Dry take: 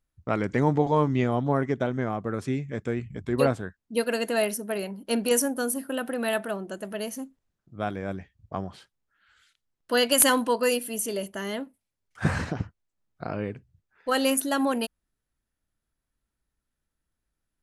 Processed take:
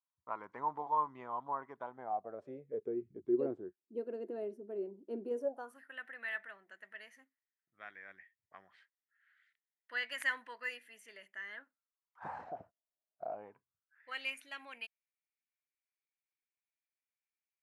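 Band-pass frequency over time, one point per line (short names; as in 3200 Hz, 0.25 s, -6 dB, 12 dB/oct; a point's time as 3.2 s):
band-pass, Q 7.9
1.8 s 1000 Hz
3.03 s 360 Hz
5.34 s 360 Hz
5.85 s 1900 Hz
11.42 s 1900 Hz
12.6 s 660 Hz
13.28 s 660 Hz
14.18 s 2300 Hz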